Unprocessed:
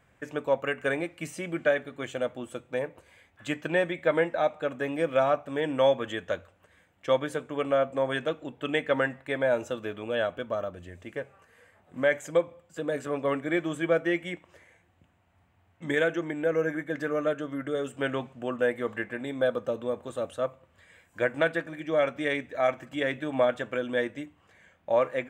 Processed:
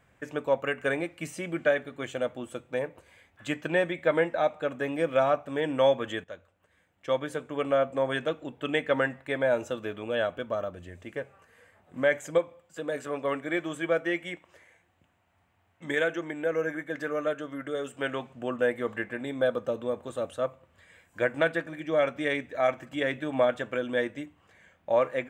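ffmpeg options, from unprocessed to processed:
-filter_complex "[0:a]asettb=1/sr,asplit=3[a][b][c];[a]atrim=end=12.384[d];[b]atrim=start=12.38:end=18.3,asetpts=PTS-STARTPTS,afade=t=in:d=0.004:c=qsin,afade=t=out:st=5.916:d=0.004:c=qsin,lowshelf=f=330:g=-6.5[e];[c]atrim=start=18.296[f];[d][e]acrossfade=d=0.004:c1=hsin:c2=qsin[g];[g][f]acrossfade=d=0.004:c1=qsin:c2=hsin,asplit=2[h][i];[h]atrim=end=6.24,asetpts=PTS-STARTPTS,afade=t=out:st=6.236:d=0.004:c=hsin:silence=0.211349[j];[i]atrim=start=6.24,asetpts=PTS-STARTPTS,afade=t=in:d=1.42:silence=0.211349[k];[j][k]concat=n=2:v=0:a=1"

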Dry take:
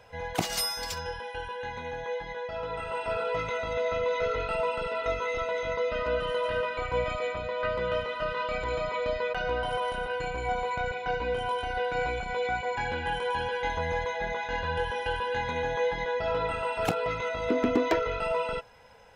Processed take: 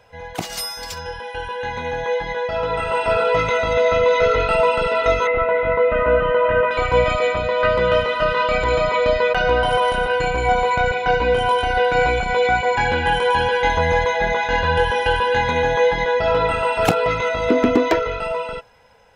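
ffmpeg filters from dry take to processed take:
-filter_complex "[0:a]asettb=1/sr,asplit=3[a][b][c];[a]atrim=end=5.274[d];[b]atrim=start=5.27:end=6.71,asetpts=PTS-STARTPTS,afade=t=in:d=0.004:c=qsin,afade=t=out:st=1.436:d=0.004:c=qsin,lowpass=f=2.3k:w=0.5412,lowpass=f=2.3k:w=1.3066[e];[c]atrim=start=6.706[f];[d][e]acrossfade=d=0.004:c1=hsin:c2=qsin[g];[g][f]acrossfade=d=0.004:c1=qsin:c2=hsin,dynaudnorm=f=160:g=17:m=11dB,volume=1.5dB"

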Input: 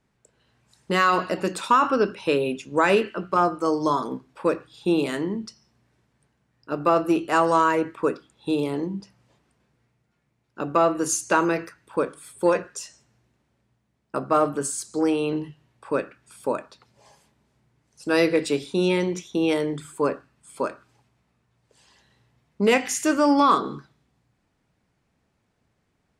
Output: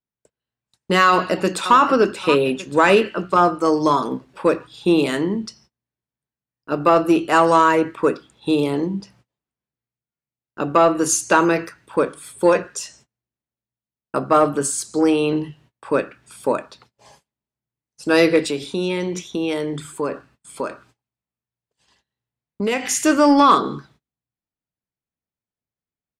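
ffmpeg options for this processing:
-filter_complex "[0:a]asplit=2[a][b];[b]afade=t=in:st=1.07:d=0.01,afade=t=out:st=1.76:d=0.01,aecho=0:1:580|1160|1740|2320|2900:0.266073|0.119733|0.0538797|0.0242459|0.0109106[c];[a][c]amix=inputs=2:normalize=0,asettb=1/sr,asplit=3[d][e][f];[d]atrim=end=18.404[g];[e]atrim=start=18.4:end=22.88,asetpts=PTS-STARTPTS,afade=t=in:d=0.004:c=qsin,afade=t=out:st=4.476:d=0.004:c=qsin,acompressor=threshold=-29dB:ratio=2:attack=3.2:release=140:knee=1:detection=peak[h];[f]atrim=start=22.876[i];[g][h]acrossfade=d=0.004:c1=hsin:c2=qsin[j];[j][i]acrossfade=d=0.004:c1=qsin:c2=hsin,agate=range=-30dB:threshold=-56dB:ratio=16:detection=peak,equalizer=f=3.4k:t=o:w=0.77:g=2,acontrast=44"

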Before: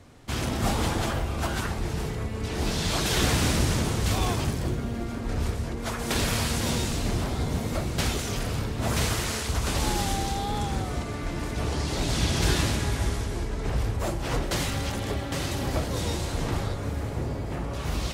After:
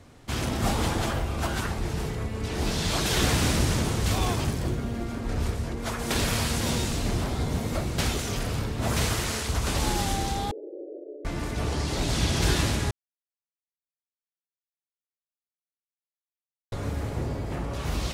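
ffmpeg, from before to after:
-filter_complex "[0:a]asettb=1/sr,asplit=3[a][b][c];[a]atrim=end=10.514[d];[b]atrim=start=10.51:end=11.25,asetpts=PTS-STARTPTS,afade=t=in:d=0.004:c=qsin,afade=t=out:st=0.736:d=0.004:c=qsin,asuperpass=centerf=430:order=12:qfactor=1.5[e];[c]atrim=start=11.246[f];[d][e]acrossfade=d=0.004:c1=hsin:c2=qsin[g];[g][f]acrossfade=d=0.004:c1=qsin:c2=hsin,asplit=3[h][i][j];[h]atrim=end=12.91,asetpts=PTS-STARTPTS,afade=t=out:st=12.906:d=0.004:c=hsin[k];[i]atrim=start=12.91:end=16.72,asetpts=PTS-STARTPTS,volume=0[l];[j]atrim=start=16.72,asetpts=PTS-STARTPTS,afade=t=in:d=0.004:c=hsin[m];[k][l][m]concat=n=3:v=0:a=1"

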